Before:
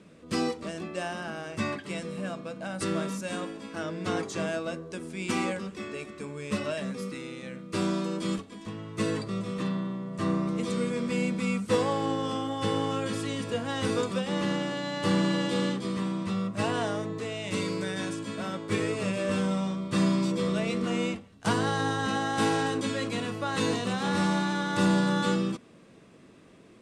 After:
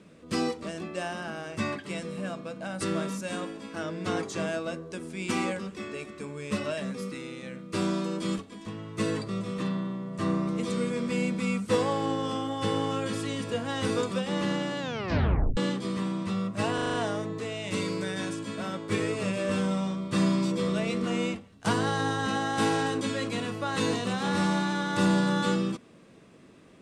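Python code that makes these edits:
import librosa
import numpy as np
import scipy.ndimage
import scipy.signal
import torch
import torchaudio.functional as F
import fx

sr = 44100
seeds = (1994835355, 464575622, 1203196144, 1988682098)

y = fx.edit(x, sr, fx.tape_stop(start_s=14.79, length_s=0.78),
    fx.stutter(start_s=16.74, slice_s=0.04, count=6), tone=tone)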